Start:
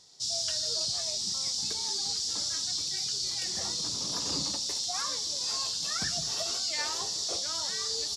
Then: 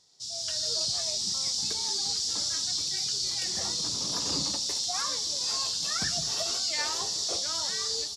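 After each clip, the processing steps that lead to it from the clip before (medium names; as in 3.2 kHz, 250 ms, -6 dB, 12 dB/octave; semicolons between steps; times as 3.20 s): level rider gain up to 8.5 dB; trim -6.5 dB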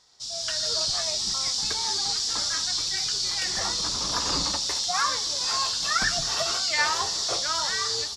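octave divider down 2 oct, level 0 dB; peaking EQ 1.4 kHz +12.5 dB 2.2 oct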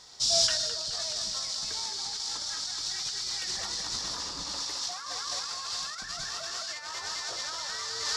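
thinning echo 212 ms, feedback 84%, high-pass 480 Hz, level -5.5 dB; compressor with a negative ratio -31 dBFS, ratio -0.5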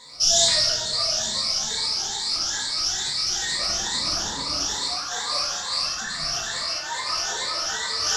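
drifting ripple filter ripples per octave 1, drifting +2.3 Hz, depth 18 dB; simulated room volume 300 m³, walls mixed, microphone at 1.9 m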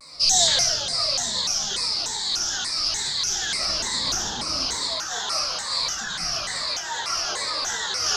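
vibrato with a chosen wave saw down 3.4 Hz, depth 250 cents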